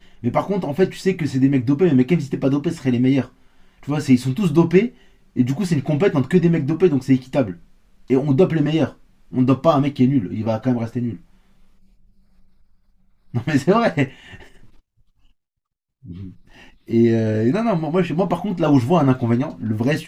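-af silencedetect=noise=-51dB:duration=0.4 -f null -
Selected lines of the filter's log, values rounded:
silence_start: 15.31
silence_end: 16.03 | silence_duration: 0.72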